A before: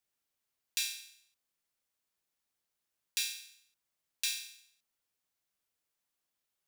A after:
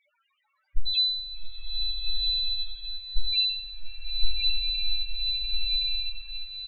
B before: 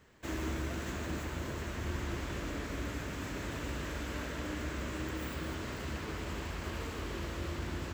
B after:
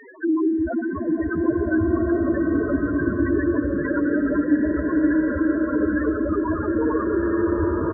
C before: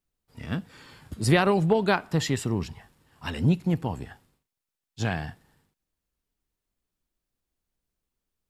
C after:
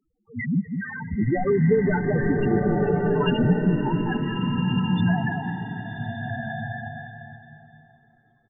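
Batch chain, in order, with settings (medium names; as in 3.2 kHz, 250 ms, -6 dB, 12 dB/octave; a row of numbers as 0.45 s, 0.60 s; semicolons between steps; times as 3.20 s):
partial rectifier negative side -7 dB; tilt EQ +2 dB/octave; delay 206 ms -14 dB; overdrive pedal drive 25 dB, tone 1.6 kHz, clips at -6.5 dBFS; in parallel at -0.5 dB: peak limiter -19.5 dBFS; on the sum: bass shelf 240 Hz +10.5 dB; compression 5:1, threshold -25 dBFS; loudest bins only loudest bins 2; swelling reverb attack 1480 ms, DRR -1 dB; peak normalisation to -9 dBFS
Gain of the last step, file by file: +16.0 dB, +14.5 dB, +10.5 dB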